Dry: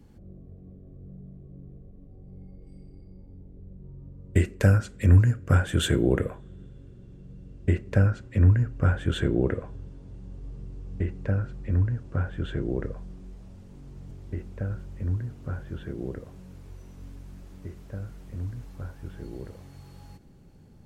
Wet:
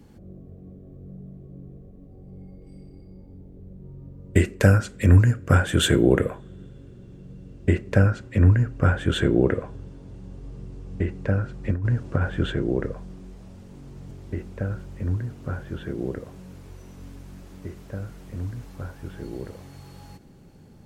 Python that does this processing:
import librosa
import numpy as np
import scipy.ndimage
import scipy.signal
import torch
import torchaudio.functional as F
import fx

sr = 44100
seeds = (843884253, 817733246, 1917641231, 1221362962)

y = fx.over_compress(x, sr, threshold_db=-25.0, ratio=-0.5, at=(11.63, 12.51), fade=0.02)
y = fx.low_shelf(y, sr, hz=98.0, db=-8.0)
y = y * 10.0 ** (6.0 / 20.0)